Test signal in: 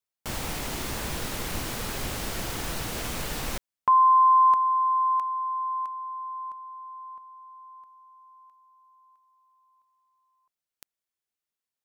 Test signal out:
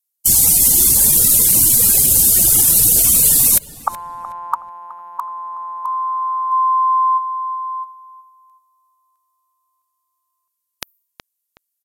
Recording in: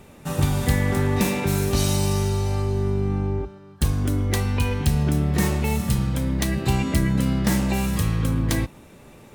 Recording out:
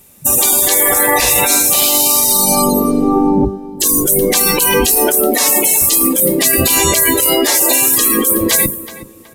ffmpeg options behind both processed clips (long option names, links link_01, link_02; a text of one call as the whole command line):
ffmpeg -i in.wav -filter_complex "[0:a]crystalizer=i=2.5:c=0,aemphasis=mode=production:type=50kf,afftdn=noise_reduction=33:noise_floor=-27,afftfilt=real='re*lt(hypot(re,im),0.2)':imag='im*lt(hypot(re,im),0.2)':win_size=1024:overlap=0.75,areverse,acompressor=threshold=-39dB:ratio=5:attack=98:release=44:knee=6:detection=peak,areverse,aeval=exprs='(mod(1.19*val(0)+1,2)-1)/1.19':channel_layout=same,adynamicequalizer=threshold=0.00355:dfrequency=5800:dqfactor=1.2:tfrequency=5800:tqfactor=1.2:attack=5:release=100:ratio=0.438:range=2.5:mode=cutabove:tftype=bell,asoftclip=type=hard:threshold=-20dB,asplit=2[link_01][link_02];[link_02]adelay=371,lowpass=frequency=2400:poles=1,volume=-18dB,asplit=2[link_03][link_04];[link_04]adelay=371,lowpass=frequency=2400:poles=1,volume=0.37,asplit=2[link_05][link_06];[link_06]adelay=371,lowpass=frequency=2400:poles=1,volume=0.37[link_07];[link_03][link_05][link_07]amix=inputs=3:normalize=0[link_08];[link_01][link_08]amix=inputs=2:normalize=0,aresample=32000,aresample=44100,alimiter=level_in=27.5dB:limit=-1dB:release=50:level=0:latency=1,volume=-1dB" out.wav